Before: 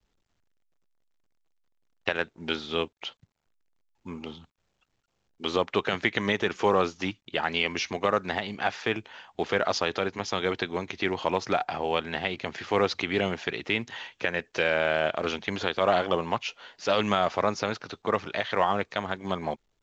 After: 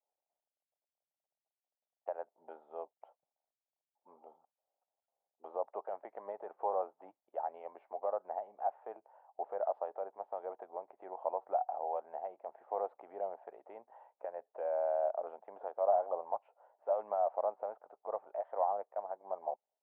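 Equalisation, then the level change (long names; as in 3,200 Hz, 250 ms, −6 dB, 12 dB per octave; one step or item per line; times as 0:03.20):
flat-topped band-pass 700 Hz, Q 2.3
high-frequency loss of the air 490 metres
−2.5 dB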